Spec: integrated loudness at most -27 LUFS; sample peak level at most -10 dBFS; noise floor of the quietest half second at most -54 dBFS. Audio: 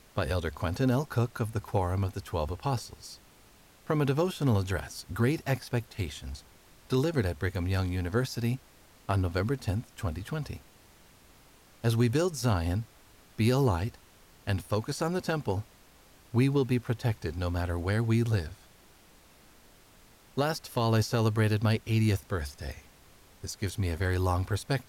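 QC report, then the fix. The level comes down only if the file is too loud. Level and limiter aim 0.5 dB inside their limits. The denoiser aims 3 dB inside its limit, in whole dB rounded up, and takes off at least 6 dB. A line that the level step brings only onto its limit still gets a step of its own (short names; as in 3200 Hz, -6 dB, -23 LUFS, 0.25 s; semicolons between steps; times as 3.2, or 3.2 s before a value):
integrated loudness -30.0 LUFS: OK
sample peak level -14.0 dBFS: OK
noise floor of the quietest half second -58 dBFS: OK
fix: none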